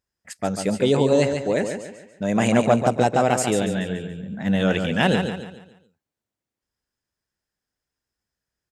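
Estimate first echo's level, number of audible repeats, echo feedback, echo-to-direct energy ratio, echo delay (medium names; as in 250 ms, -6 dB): -7.0 dB, 4, 39%, -6.5 dB, 143 ms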